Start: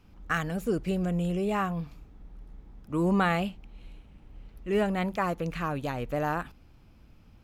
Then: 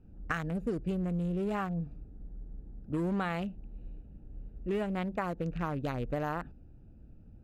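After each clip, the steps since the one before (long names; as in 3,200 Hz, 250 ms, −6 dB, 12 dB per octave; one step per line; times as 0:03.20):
adaptive Wiener filter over 41 samples
high-shelf EQ 8,600 Hz −4 dB
downward compressor, threshold −32 dBFS, peak gain reduction 10.5 dB
level +2.5 dB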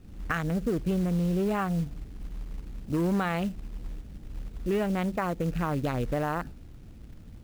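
in parallel at +1.5 dB: brickwall limiter −29 dBFS, peak gain reduction 11 dB
on the sum: log-companded quantiser 6 bits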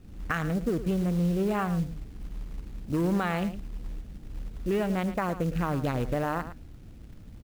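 single-tap delay 110 ms −12.5 dB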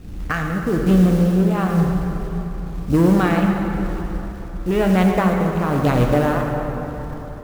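in parallel at −7 dB: hard clipping −26.5 dBFS, distortion −11 dB
on the sum: amplitude tremolo 1 Hz, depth 59%
dense smooth reverb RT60 3.9 s, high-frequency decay 0.55×, DRR 1.5 dB
level +8.5 dB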